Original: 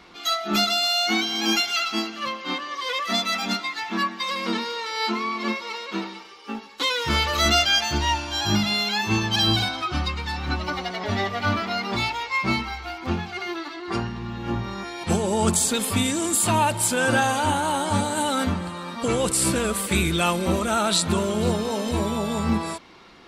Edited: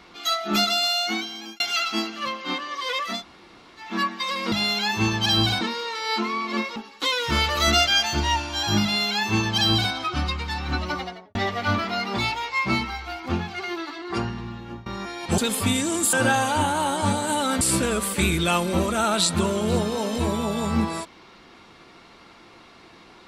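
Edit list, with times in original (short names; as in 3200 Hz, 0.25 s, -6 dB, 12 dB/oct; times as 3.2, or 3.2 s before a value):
0.85–1.6 fade out
3.14–3.87 room tone, crossfade 0.24 s
5.67–6.54 cut
8.62–9.71 copy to 4.52
10.71–11.13 studio fade out
14.14–14.64 fade out, to -20.5 dB
15.16–15.68 cut
16.43–17.01 cut
18.49–19.34 cut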